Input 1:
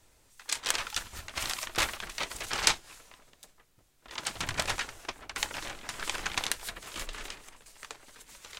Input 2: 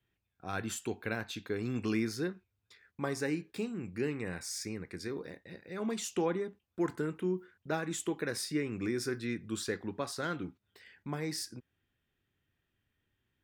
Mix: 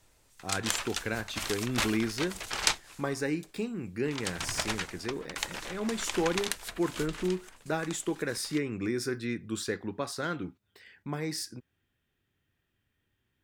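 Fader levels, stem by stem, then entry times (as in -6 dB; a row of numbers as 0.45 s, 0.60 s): -1.5 dB, +2.5 dB; 0.00 s, 0.00 s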